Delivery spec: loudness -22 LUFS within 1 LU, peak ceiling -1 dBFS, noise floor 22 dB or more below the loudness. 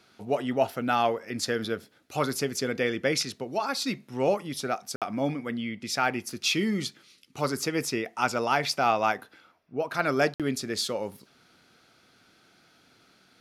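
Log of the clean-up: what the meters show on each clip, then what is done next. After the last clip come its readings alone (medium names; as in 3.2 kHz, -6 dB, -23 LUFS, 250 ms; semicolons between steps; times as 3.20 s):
dropouts 2; longest dropout 57 ms; loudness -28.5 LUFS; peak level -10.5 dBFS; loudness target -22.0 LUFS
-> interpolate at 4.96/10.34 s, 57 ms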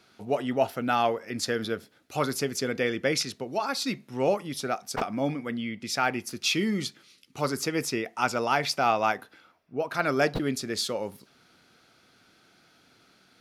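dropouts 0; loudness -28.5 LUFS; peak level -10.5 dBFS; loudness target -22.0 LUFS
-> trim +6.5 dB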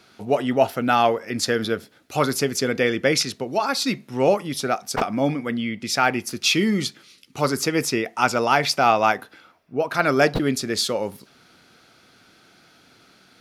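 loudness -22.0 LUFS; peak level -4.0 dBFS; noise floor -55 dBFS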